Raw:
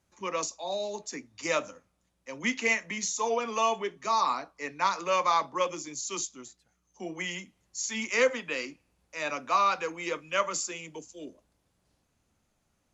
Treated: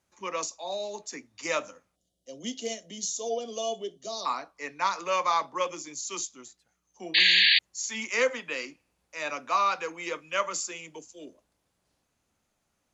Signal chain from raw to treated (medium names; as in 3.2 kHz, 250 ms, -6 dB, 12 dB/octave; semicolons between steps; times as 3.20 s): time-frequency box 1.96–4.26 s, 770–2800 Hz -20 dB; bass shelf 250 Hz -7 dB; painted sound noise, 7.14–7.59 s, 1.6–4.7 kHz -20 dBFS